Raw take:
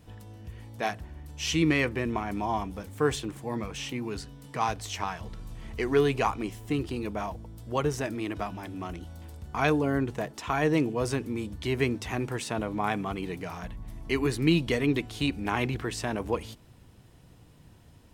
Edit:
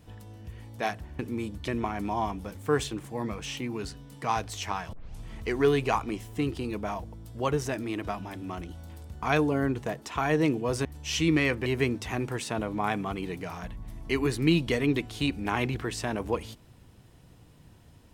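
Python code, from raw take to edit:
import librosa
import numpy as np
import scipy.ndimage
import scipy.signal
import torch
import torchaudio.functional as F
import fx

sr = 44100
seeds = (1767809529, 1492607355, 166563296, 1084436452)

y = fx.edit(x, sr, fx.swap(start_s=1.19, length_s=0.81, other_s=11.17, other_length_s=0.49),
    fx.tape_start(start_s=5.25, length_s=0.28), tone=tone)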